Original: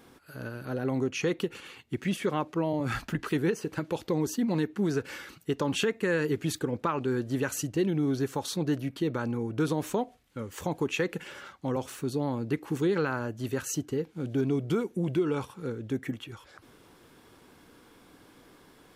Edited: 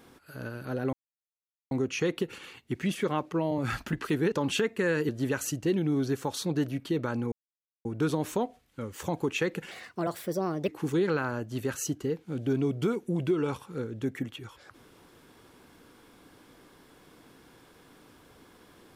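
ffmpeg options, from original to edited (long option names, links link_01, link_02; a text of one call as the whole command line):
ffmpeg -i in.wav -filter_complex "[0:a]asplit=7[link_01][link_02][link_03][link_04][link_05][link_06][link_07];[link_01]atrim=end=0.93,asetpts=PTS-STARTPTS,afade=type=out:start_time=0.926:duration=0.004:curve=hsin,apad=pad_dur=0.78[link_08];[link_02]atrim=start=0.93:end=3.542,asetpts=PTS-STARTPTS,afade=type=in:duration=0.004:curve=hsin[link_09];[link_03]atrim=start=5.558:end=6.332[link_10];[link_04]atrim=start=7.198:end=9.43,asetpts=PTS-STARTPTS,afade=type=out:start_time=2.228:duration=0.004:curve=hsin,apad=pad_dur=0.53[link_11];[link_05]atrim=start=9.43:end=11.294,asetpts=PTS-STARTPTS,afade=type=in:duration=0.004:curve=hsin[link_12];[link_06]atrim=start=11.29:end=12.56,asetpts=PTS-STARTPTS,asetrate=57771,aresample=44100,atrim=end_sample=42753,asetpts=PTS-STARTPTS[link_13];[link_07]atrim=start=12.556[link_14];[link_08][link_09]concat=n=2:v=0:a=1[link_15];[link_15][link_10]acrossfade=duration=0.004:curve1=hsin:curve2=hsin[link_16];[link_11][link_12]concat=n=2:v=0:a=1[link_17];[link_16][link_17]acrossfade=duration=0.004:curve1=hsin:curve2=hsin[link_18];[link_18][link_13]acrossfade=duration=0.004:curve1=hsin:curve2=hsin[link_19];[link_19][link_14]acrossfade=duration=0.004:curve1=hsin:curve2=hsin" out.wav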